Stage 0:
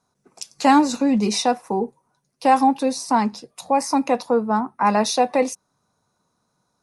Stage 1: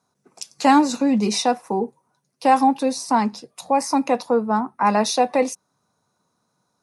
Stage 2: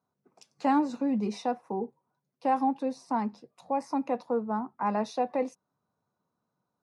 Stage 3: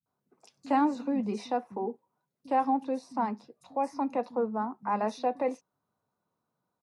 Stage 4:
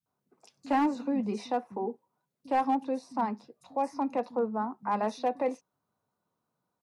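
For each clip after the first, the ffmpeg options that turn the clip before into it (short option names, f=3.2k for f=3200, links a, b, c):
-af "highpass=93"
-af "lowpass=f=1.2k:p=1,volume=-9dB"
-filter_complex "[0:a]acrossover=split=180|5900[a][b][c];[c]adelay=30[d];[b]adelay=60[e];[a][e][d]amix=inputs=3:normalize=0"
-af "asoftclip=type=hard:threshold=-19.5dB"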